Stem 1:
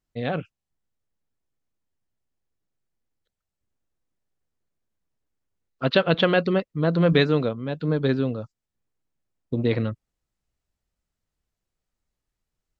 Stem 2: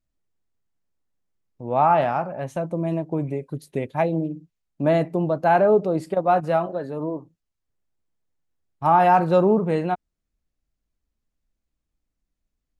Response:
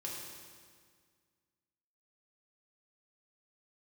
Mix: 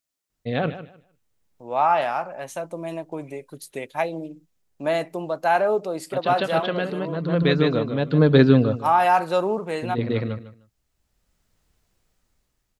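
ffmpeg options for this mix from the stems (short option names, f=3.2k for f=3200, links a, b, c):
-filter_complex "[0:a]dynaudnorm=f=260:g=9:m=13dB,adelay=300,volume=2.5dB,asplit=2[a][b];[b]volume=-13.5dB[c];[1:a]highpass=f=730:p=1,highshelf=f=3.5k:g=9.5,volume=0.5dB,asplit=2[d][e];[e]apad=whole_len=577578[f];[a][f]sidechaincompress=threshold=-43dB:ratio=4:attack=9:release=895[g];[c]aecho=0:1:152|304|456:1|0.2|0.04[h];[g][d][h]amix=inputs=3:normalize=0"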